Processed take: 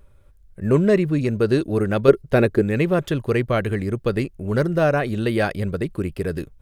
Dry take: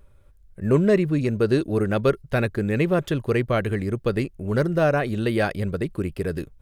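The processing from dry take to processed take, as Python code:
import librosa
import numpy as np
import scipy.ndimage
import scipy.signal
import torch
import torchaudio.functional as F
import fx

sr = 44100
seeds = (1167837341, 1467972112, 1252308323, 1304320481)

y = fx.peak_eq(x, sr, hz=380.0, db=8.5, octaves=1.5, at=(2.08, 2.62))
y = F.gain(torch.from_numpy(y), 1.5).numpy()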